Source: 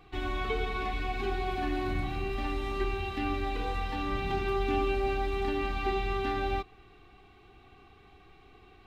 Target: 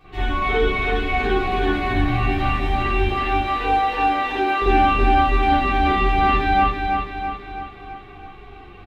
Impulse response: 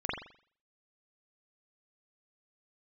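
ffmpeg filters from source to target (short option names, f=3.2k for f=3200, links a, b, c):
-filter_complex "[0:a]asettb=1/sr,asplit=3[a][b][c];[a]atrim=end=3.074[d];[b]atrim=start=3.07:end=4.62,asetpts=PTS-STARTPTS,afade=t=in:d=0.004:c=qsin,afade=t=out:st=1.546:d=0.004:c=qsin,highpass=f=330:w=0.5412,highpass=f=330:w=1.3066[e];[c]atrim=start=4.616[f];[d][e]acrossfade=d=0.004:c1=hsin:c2=qsin[g];[g][f]acrossfade=d=0.004:c1=qsin:c2=hsin,aecho=1:1:329|658|987|1316|1645|1974|2303:0.562|0.304|0.164|0.0885|0.0478|0.0258|0.0139[h];[1:a]atrim=start_sample=2205,atrim=end_sample=4410[i];[h][i]afir=irnorm=-1:irlink=0,asplit=2[j][k];[k]adelay=11.1,afreqshift=-2.9[l];[j][l]amix=inputs=2:normalize=1,volume=9dB"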